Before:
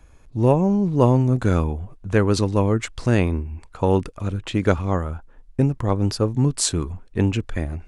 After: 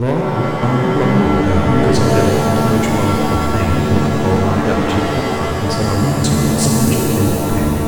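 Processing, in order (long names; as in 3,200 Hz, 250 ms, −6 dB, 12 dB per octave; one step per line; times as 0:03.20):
slices reordered back to front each 208 ms, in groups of 3
leveller curve on the samples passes 3
reverb with rising layers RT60 3 s, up +7 semitones, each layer −2 dB, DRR −1.5 dB
level −8.5 dB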